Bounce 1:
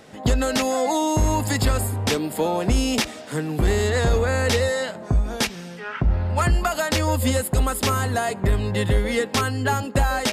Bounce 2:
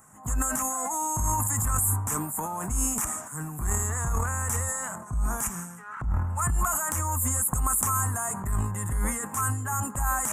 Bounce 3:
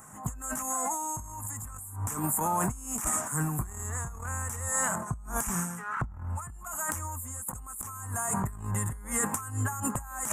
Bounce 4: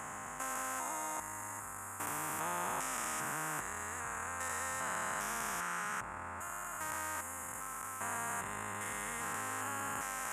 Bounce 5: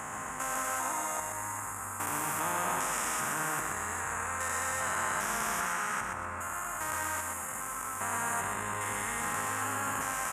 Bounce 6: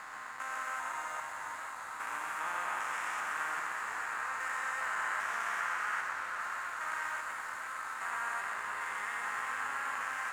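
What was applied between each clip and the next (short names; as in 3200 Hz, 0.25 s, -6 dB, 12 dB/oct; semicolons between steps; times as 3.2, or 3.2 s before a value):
EQ curve 140 Hz 0 dB, 510 Hz -16 dB, 1100 Hz +8 dB, 4400 Hz -29 dB, 7100 Hz +13 dB; transient shaper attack -6 dB, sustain +10 dB; gain -7 dB
negative-ratio compressor -32 dBFS, ratio -0.5
stepped spectrum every 0.4 s; band-pass 1400 Hz, Q 1.5; spectral compressor 2:1; gain +5 dB
feedback echo 0.124 s, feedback 37%, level -5 dB; gain +4.5 dB
band-pass 1700 Hz, Q 1.2; crossover distortion -54 dBFS; warbling echo 0.466 s, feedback 77%, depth 74 cents, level -8 dB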